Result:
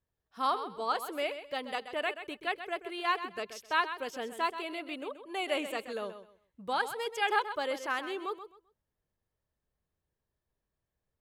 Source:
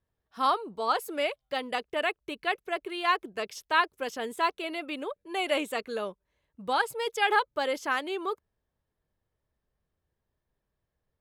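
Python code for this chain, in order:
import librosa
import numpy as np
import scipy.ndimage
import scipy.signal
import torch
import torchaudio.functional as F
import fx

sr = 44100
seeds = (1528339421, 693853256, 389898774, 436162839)

y = fx.echo_feedback(x, sr, ms=130, feedback_pct=23, wet_db=-11)
y = y * 10.0 ** (-4.5 / 20.0)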